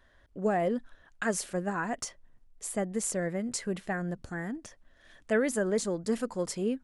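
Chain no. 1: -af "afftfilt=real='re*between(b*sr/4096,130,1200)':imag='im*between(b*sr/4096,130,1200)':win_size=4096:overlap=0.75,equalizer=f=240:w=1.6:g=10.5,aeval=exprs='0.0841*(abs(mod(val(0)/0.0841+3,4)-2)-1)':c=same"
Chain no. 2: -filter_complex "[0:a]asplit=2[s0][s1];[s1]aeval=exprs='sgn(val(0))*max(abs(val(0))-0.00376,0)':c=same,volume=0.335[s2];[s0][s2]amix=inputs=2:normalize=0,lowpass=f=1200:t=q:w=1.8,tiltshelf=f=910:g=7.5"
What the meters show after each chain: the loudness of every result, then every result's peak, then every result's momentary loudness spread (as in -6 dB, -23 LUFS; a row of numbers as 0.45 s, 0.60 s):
-31.0 LUFS, -25.0 LUFS; -21.5 dBFS, -9.0 dBFS; 6 LU, 9 LU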